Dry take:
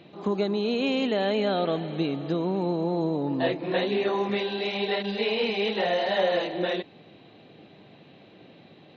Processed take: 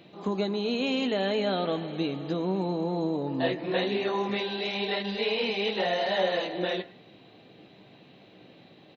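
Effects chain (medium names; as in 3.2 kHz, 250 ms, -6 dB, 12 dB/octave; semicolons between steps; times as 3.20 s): treble shelf 5.6 kHz +7.5 dB; doubling 16 ms -10.5 dB; on a send: reverberation RT60 0.45 s, pre-delay 95 ms, DRR 17.5 dB; on the sum: trim -2.5 dB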